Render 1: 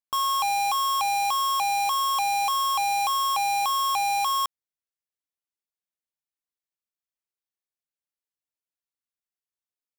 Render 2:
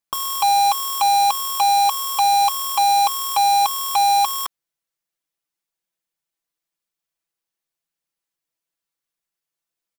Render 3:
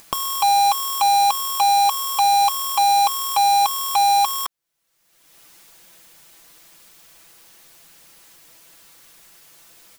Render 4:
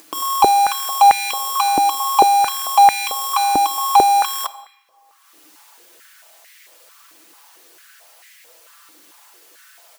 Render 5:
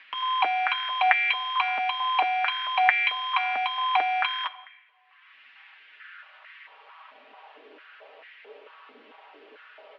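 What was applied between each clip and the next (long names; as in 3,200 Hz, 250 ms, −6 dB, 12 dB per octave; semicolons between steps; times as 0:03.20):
comb filter 6 ms, depth 76%; level +6 dB
upward compression, threshold −21 dBFS
on a send at −11.5 dB: convolution reverb RT60 1.6 s, pre-delay 7 ms; on the sum: boost into a limiter +11 dB; high-pass on a step sequencer 4.5 Hz 300–2,000 Hz; level −11 dB
high-pass filter sweep 1,900 Hz → 480 Hz, 0:05.90–0:07.71; single-sideband voice off tune −61 Hz 160–3,200 Hz; notch comb filter 180 Hz; level +2.5 dB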